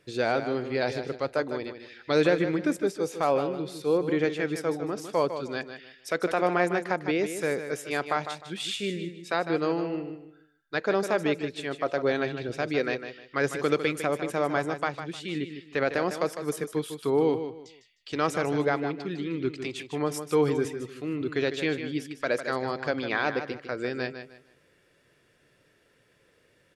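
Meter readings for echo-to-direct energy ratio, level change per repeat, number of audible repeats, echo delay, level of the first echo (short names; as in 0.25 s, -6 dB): -9.0 dB, -11.5 dB, 3, 0.153 s, -9.5 dB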